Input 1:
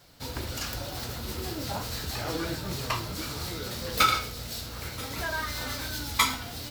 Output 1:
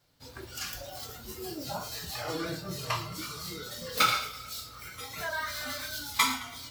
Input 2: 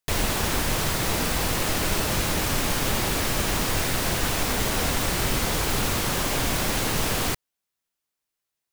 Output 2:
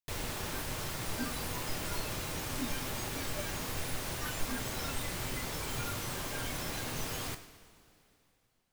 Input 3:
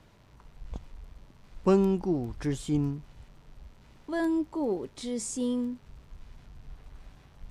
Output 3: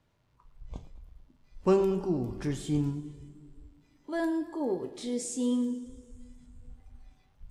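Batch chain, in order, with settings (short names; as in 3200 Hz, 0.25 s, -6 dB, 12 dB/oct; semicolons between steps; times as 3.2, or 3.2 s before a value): two-slope reverb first 0.34 s, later 3.2 s, from -18 dB, DRR 6.5 dB; spectral noise reduction 12 dB; warbling echo 0.11 s, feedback 55%, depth 92 cents, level -17 dB; gain -2 dB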